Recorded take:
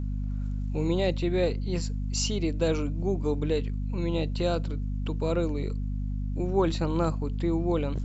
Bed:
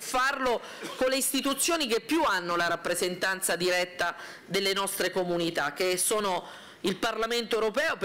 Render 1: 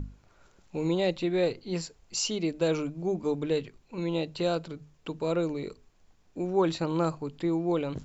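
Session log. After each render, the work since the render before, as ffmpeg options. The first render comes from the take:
-af "bandreject=f=50:t=h:w=6,bandreject=f=100:t=h:w=6,bandreject=f=150:t=h:w=6,bandreject=f=200:t=h:w=6,bandreject=f=250:t=h:w=6"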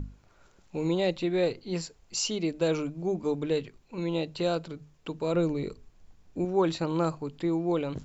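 -filter_complex "[0:a]asettb=1/sr,asplit=3[a][b][c];[a]atrim=end=5.344[d];[b]atrim=start=5.34:end=6.45,asetpts=PTS-STARTPTS,afade=t=in:d=0.004:c=qsin,afade=t=out:st=1.106:d=0.004:c=qsin,lowshelf=f=220:g=8[e];[c]atrim=start=6.446[f];[d][e]acrossfade=d=0.004:c1=hsin:c2=qsin[g];[g][f]acrossfade=d=0.004:c1=qsin:c2=hsin"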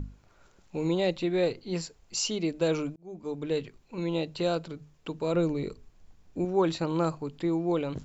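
-filter_complex "[0:a]asplit=2[a][b];[a]atrim=end=2.96,asetpts=PTS-STARTPTS,afade=t=out:st=2.956:d=0.004:c=hsin[c];[b]atrim=start=2.96,asetpts=PTS-STARTPTS,afade=t=in:d=0.68[d];[c][d]concat=n=2:v=0:a=1"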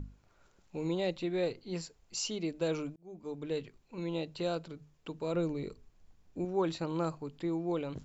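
-af "volume=-6dB"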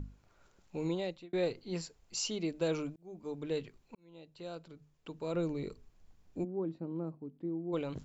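-filter_complex "[0:a]asplit=3[a][b][c];[a]afade=t=out:st=6.43:d=0.02[d];[b]bandpass=f=240:t=q:w=1.6,afade=t=in:st=6.43:d=0.02,afade=t=out:st=7.72:d=0.02[e];[c]afade=t=in:st=7.72:d=0.02[f];[d][e][f]amix=inputs=3:normalize=0,asplit=3[g][h][i];[g]atrim=end=1.33,asetpts=PTS-STARTPTS,afade=t=out:st=0.86:d=0.47[j];[h]atrim=start=1.33:end=3.95,asetpts=PTS-STARTPTS,afade=t=in:d=0.004:c=hsin,afade=t=out:st=2.616:d=0.004:c=hsin[k];[i]atrim=start=3.95,asetpts=PTS-STARTPTS,afade=t=in:d=1.75[l];[j][k][l]concat=n=3:v=0:a=1"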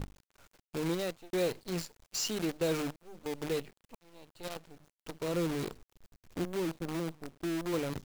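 -filter_complex "[0:a]asplit=2[a][b];[b]asoftclip=type=tanh:threshold=-34dB,volume=-9.5dB[c];[a][c]amix=inputs=2:normalize=0,acrusher=bits=7:dc=4:mix=0:aa=0.000001"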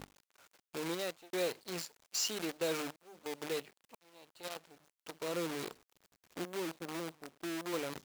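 -af "highpass=f=580:p=1"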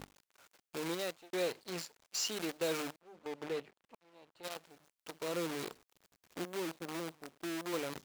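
-filter_complex "[0:a]asettb=1/sr,asplit=3[a][b][c];[a]atrim=end=1.174[d];[b]atrim=start=1.17:end=2.32,asetpts=PTS-STARTPTS,afade=t=in:d=0.004:c=qsin,afade=t=out:st=1.146:d=0.004:c=qsin,highshelf=f=7.7k:g=-4.5[e];[c]atrim=start=2.316[f];[d][e]acrossfade=d=0.004:c1=hsin:c2=qsin[g];[g][f]acrossfade=d=0.004:c1=qsin:c2=hsin,asplit=3[h][i][j];[h]afade=t=out:st=2.96:d=0.02[k];[i]lowpass=f=2k:p=1,afade=t=in:st=2.96:d=0.02,afade=t=out:st=4.43:d=0.02[l];[j]afade=t=in:st=4.43:d=0.02[m];[k][l][m]amix=inputs=3:normalize=0"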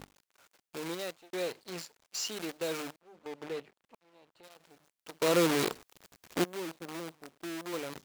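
-filter_complex "[0:a]asettb=1/sr,asplit=3[a][b][c];[a]atrim=end=4.074[d];[b]atrim=start=4.07:end=4.6,asetpts=PTS-STARTPTS,afade=t=in:d=0.004:c=qsin,afade=t=out:st=0.526:d=0.004:c=qsin,acompressor=threshold=-54dB:ratio=3:attack=3.2:release=140:knee=1:detection=peak[e];[c]atrim=start=4.596[f];[d][e]acrossfade=d=0.004:c1=hsin:c2=qsin[g];[g][f]acrossfade=d=0.004:c1=qsin:c2=hsin,asplit=3[h][i][j];[h]atrim=end=5.222[k];[i]atrim=start=5.218:end=6.442,asetpts=PTS-STARTPTS,volume=11.5dB[l];[j]atrim=start=6.438[m];[k][l]acrossfade=d=0.004:c1=hsin:c2=hsin[n];[n][m]acrossfade=d=0.004:c1=hsin:c2=hsin"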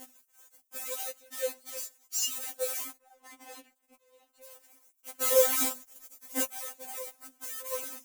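-af "aexciter=amount=6.5:drive=1.4:freq=6.1k,afftfilt=real='re*3.46*eq(mod(b,12),0)':imag='im*3.46*eq(mod(b,12),0)':win_size=2048:overlap=0.75"

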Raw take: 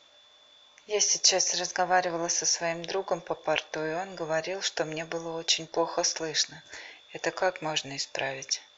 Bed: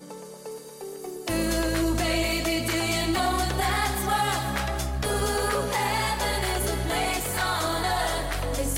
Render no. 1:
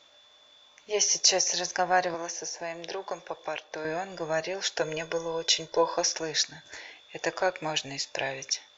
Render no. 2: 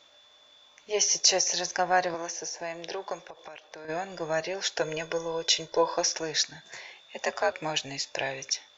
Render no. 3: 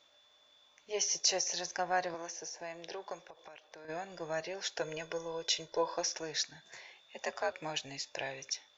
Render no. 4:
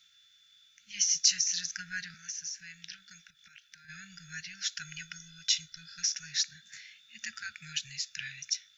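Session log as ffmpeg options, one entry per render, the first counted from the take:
-filter_complex "[0:a]asettb=1/sr,asplit=3[a][b][c];[a]atrim=end=2.144[d];[b]atrim=start=2.14:end=3.85,asetpts=PTS-STARTPTS,afade=t=in:d=0.004:c=qsin,afade=t=out:st=1.706:d=0.004:c=qsin,acrossover=split=240|930[e][f][g];[e]acompressor=threshold=-58dB:ratio=4[h];[f]acompressor=threshold=-35dB:ratio=4[i];[g]acompressor=threshold=-36dB:ratio=4[j];[h][i][j]amix=inputs=3:normalize=0[k];[c]atrim=start=3.846[l];[d][k]acrossfade=d=0.004:c1=hsin:c2=qsin[m];[m][l]acrossfade=d=0.004:c1=qsin:c2=hsin,asettb=1/sr,asplit=3[n][o][p];[n]atrim=end=4.814[q];[o]atrim=start=4.81:end=5.94,asetpts=PTS-STARTPTS,afade=t=in:d=0.004:c=qsin,afade=t=out:st=1.126:d=0.004:c=qsin,aecho=1:1:2:0.65,atrim=end_sample=49833[r];[p]atrim=start=5.936[s];[q][r]acrossfade=d=0.004:c1=hsin:c2=qsin[t];[t][s]acrossfade=d=0.004:c1=qsin:c2=hsin"
-filter_complex "[0:a]asplit=3[a][b][c];[a]afade=t=out:st=3.23:d=0.02[d];[b]acompressor=threshold=-39dB:ratio=10:attack=3.2:release=140:knee=1:detection=peak,afade=t=in:st=3.23:d=0.02,afade=t=out:st=3.88:d=0.02[e];[c]afade=t=in:st=3.88:d=0.02[f];[d][e][f]amix=inputs=3:normalize=0,asettb=1/sr,asplit=3[g][h][i];[g]atrim=end=6.624[j];[h]atrim=start=6.62:end=7.52,asetpts=PTS-STARTPTS,afade=t=in:d=0.004:c=qsin,afade=t=out:st=0.896:d=0.004:c=qsin,afreqshift=65[k];[i]atrim=start=7.516[l];[j][k]acrossfade=d=0.004:c1=hsin:c2=qsin[m];[m][l]acrossfade=d=0.004:c1=qsin:c2=hsin"
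-af "volume=-8dB"
-af "afftfilt=real='re*(1-between(b*sr/4096,230,1300))':imag='im*(1-between(b*sr/4096,230,1300))':win_size=4096:overlap=0.75,highshelf=f=4.1k:g=8.5"

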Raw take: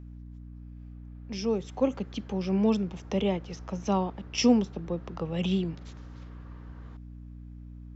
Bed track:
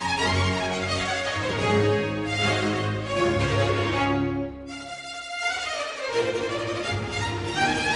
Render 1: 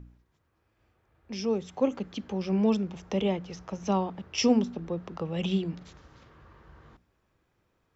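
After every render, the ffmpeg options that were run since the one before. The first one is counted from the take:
-af "bandreject=f=60:t=h:w=4,bandreject=f=120:t=h:w=4,bandreject=f=180:t=h:w=4,bandreject=f=240:t=h:w=4,bandreject=f=300:t=h:w=4"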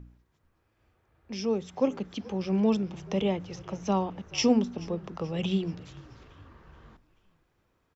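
-filter_complex "[0:a]asplit=5[a][b][c][d][e];[b]adelay=431,afreqshift=-49,volume=-21dB[f];[c]adelay=862,afreqshift=-98,volume=-27dB[g];[d]adelay=1293,afreqshift=-147,volume=-33dB[h];[e]adelay=1724,afreqshift=-196,volume=-39.1dB[i];[a][f][g][h][i]amix=inputs=5:normalize=0"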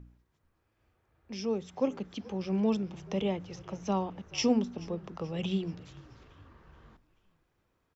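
-af "volume=-3.5dB"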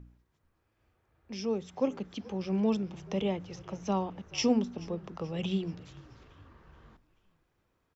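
-af anull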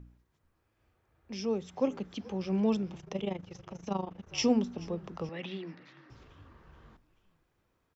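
-filter_complex "[0:a]asplit=3[a][b][c];[a]afade=t=out:st=2.97:d=0.02[d];[b]tremolo=f=25:d=0.824,afade=t=in:st=2.97:d=0.02,afade=t=out:st=4.26:d=0.02[e];[c]afade=t=in:st=4.26:d=0.02[f];[d][e][f]amix=inputs=3:normalize=0,asettb=1/sr,asplit=3[g][h][i];[g]atrim=end=5.294[j];[h]atrim=start=5.29:end=6.1,asetpts=PTS-STARTPTS,afade=t=in:d=0.004:c=qsin,afade=t=out:st=0.806:d=0.004:c=qsin,highpass=f=190:w=0.5412,highpass=f=190:w=1.3066,equalizer=f=200:t=q:w=4:g=-10,equalizer=f=430:t=q:w=4:g=-9,equalizer=f=690:t=q:w=4:g=-4,equalizer=f=1.9k:t=q:w=4:g=10,equalizer=f=3.1k:t=q:w=4:g=-7,lowpass=f=4.5k:w=0.5412,lowpass=f=4.5k:w=1.3066[k];[i]atrim=start=6.096[l];[j][k]acrossfade=d=0.004:c1=hsin:c2=qsin[m];[m][l]acrossfade=d=0.004:c1=qsin:c2=hsin"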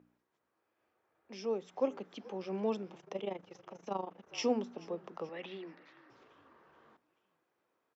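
-af "highpass=370,highshelf=f=2.5k:g=-9"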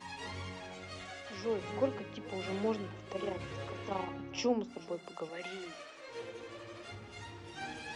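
-filter_complex "[1:a]volume=-20dB[a];[0:a][a]amix=inputs=2:normalize=0"

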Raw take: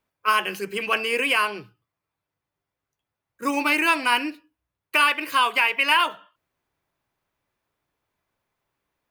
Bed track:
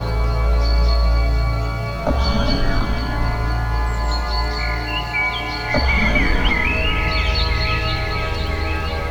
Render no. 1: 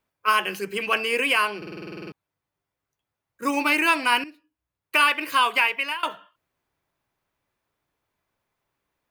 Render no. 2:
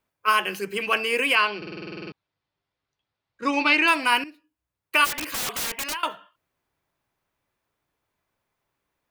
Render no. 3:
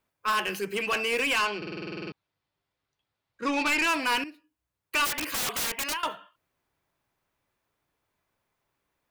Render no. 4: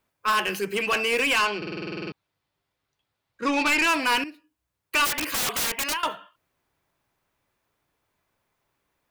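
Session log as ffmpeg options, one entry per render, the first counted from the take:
-filter_complex "[0:a]asplit=14[a][b][c][d][e][f][g][h][i][j][k][l][m][n];[a]atrim=end=1.622[o];[b]atrim=start=1.568:end=1.622[p];[c]atrim=start=1.568:end=1.622[q];[d]atrim=start=1.568:end=1.622[r];[e]atrim=start=1.568:end=1.622[s];[f]atrim=start=1.568:end=1.622[t];[g]atrim=start=1.568:end=1.622[u];[h]atrim=start=1.568:end=1.622[v];[i]atrim=start=1.568:end=1.622[w];[j]atrim=start=1.568:end=1.622[x];[k]atrim=start=1.568:end=1.622[y];[l]atrim=start=2.118:end=4.24,asetpts=PTS-STARTPTS,afade=t=out:st=2.118:d=0.004:c=hsin:silence=0.199526[z];[m]atrim=start=4.24:end=6.03,asetpts=PTS-STARTPTS,afade=t=in:d=0.73:silence=0.199526,afade=t=out:st=1.38:d=0.41:silence=0.0707946[aa];[n]atrim=start=6.03,asetpts=PTS-STARTPTS,afade=t=in:d=0.004:c=hsin:silence=0.0707946[ab];[o][p]acrossfade=d=0.004:c1=hsin:c2=hsin[ac];[ac][q]acrossfade=d=0.004:c1=hsin:c2=hsin[ad];[ad][r]acrossfade=d=0.004:c1=hsin:c2=hsin[ae];[ae][s]acrossfade=d=0.004:c1=hsin:c2=hsin[af];[af][t]acrossfade=d=0.004:c1=hsin:c2=hsin[ag];[ag][u]acrossfade=d=0.004:c1=hsin:c2=hsin[ah];[ah][v]acrossfade=d=0.004:c1=hsin:c2=hsin[ai];[ai][w]acrossfade=d=0.004:c1=hsin:c2=hsin[aj];[aj][x]acrossfade=d=0.004:c1=hsin:c2=hsin[ak];[ak][y]acrossfade=d=0.004:c1=hsin:c2=hsin[al];[z][aa][ab]concat=n=3:v=0:a=1[am];[al][am]acrossfade=d=0.004:c1=hsin:c2=hsin"
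-filter_complex "[0:a]asettb=1/sr,asplit=3[a][b][c];[a]atrim=end=1.354[d];[b]atrim=start=1.35:end=3.88,asetpts=PTS-STARTPTS,afade=t=in:d=0.004:c=qsin,afade=t=out:st=2.526:d=0.004:c=qsin,lowpass=f=4.2k:t=q:w=1.8[e];[c]atrim=start=3.876[f];[d][e]acrossfade=d=0.004:c1=hsin:c2=qsin[g];[g][f]acrossfade=d=0.004:c1=qsin:c2=hsin,asplit=3[h][i][j];[h]afade=t=out:st=5.04:d=0.02[k];[i]aeval=exprs='(mod(14.1*val(0)+1,2)-1)/14.1':c=same,afade=t=in:st=5.04:d=0.02,afade=t=out:st=5.93:d=0.02[l];[j]afade=t=in:st=5.93:d=0.02[m];[k][l][m]amix=inputs=3:normalize=0"
-af "asoftclip=type=tanh:threshold=-21.5dB"
-af "volume=3.5dB"

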